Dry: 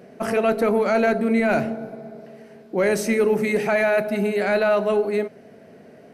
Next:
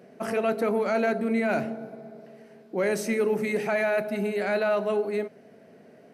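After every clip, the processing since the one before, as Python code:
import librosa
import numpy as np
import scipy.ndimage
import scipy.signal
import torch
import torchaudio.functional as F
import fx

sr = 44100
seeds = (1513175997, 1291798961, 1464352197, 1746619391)

y = scipy.signal.sosfilt(scipy.signal.butter(2, 110.0, 'highpass', fs=sr, output='sos'), x)
y = y * librosa.db_to_amplitude(-5.5)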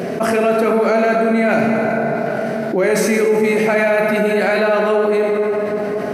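y = fx.rev_plate(x, sr, seeds[0], rt60_s=2.6, hf_ratio=0.6, predelay_ms=0, drr_db=1.5)
y = fx.env_flatten(y, sr, amount_pct=70)
y = y * librosa.db_to_amplitude(4.0)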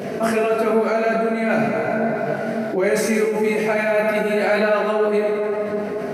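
y = fx.detune_double(x, sr, cents=15)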